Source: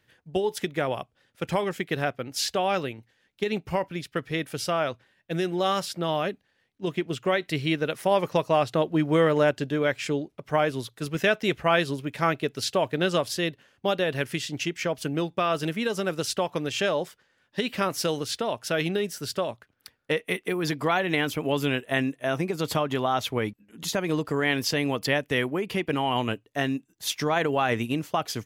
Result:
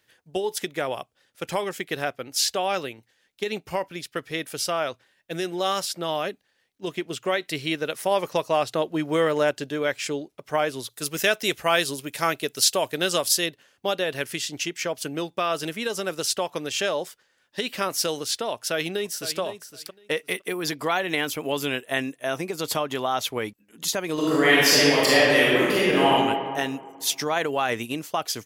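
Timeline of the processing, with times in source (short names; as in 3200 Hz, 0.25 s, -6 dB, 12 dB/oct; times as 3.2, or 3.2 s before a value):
10.9–13.46 high shelf 5200 Hz +10.5 dB
18.54–19.39 echo throw 0.51 s, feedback 15%, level -11.5 dB
24.13–26.09 reverb throw, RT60 1.9 s, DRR -8 dB
whole clip: tone controls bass -8 dB, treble +7 dB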